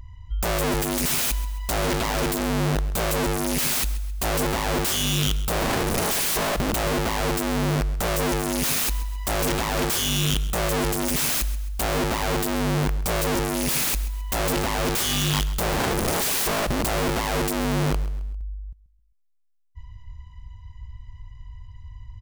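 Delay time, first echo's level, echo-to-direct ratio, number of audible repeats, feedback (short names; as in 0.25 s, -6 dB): 0.133 s, -16.0 dB, -15.5 dB, 3, 39%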